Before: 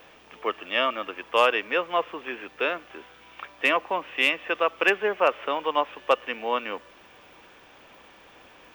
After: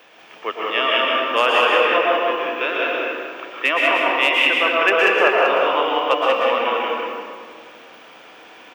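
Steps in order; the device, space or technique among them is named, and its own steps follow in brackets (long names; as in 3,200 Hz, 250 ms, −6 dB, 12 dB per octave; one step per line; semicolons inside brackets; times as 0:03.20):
stadium PA (high-pass filter 210 Hz 12 dB per octave; parametric band 3,100 Hz +3.5 dB 2.7 octaves; loudspeakers that aren't time-aligned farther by 53 metres −11 dB, 64 metres −3 dB; convolution reverb RT60 2.0 s, pre-delay 108 ms, DRR −3 dB)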